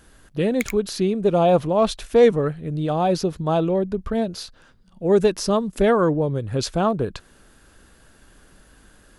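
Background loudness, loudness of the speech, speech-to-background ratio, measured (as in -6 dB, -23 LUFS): -34.5 LUFS, -21.0 LUFS, 13.5 dB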